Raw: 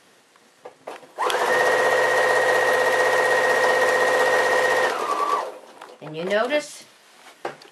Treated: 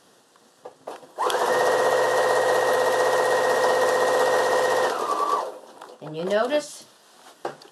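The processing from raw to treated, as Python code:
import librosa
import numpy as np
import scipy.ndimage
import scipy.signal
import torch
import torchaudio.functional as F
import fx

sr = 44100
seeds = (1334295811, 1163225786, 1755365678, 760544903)

y = fx.peak_eq(x, sr, hz=2200.0, db=-14.0, octaves=0.48)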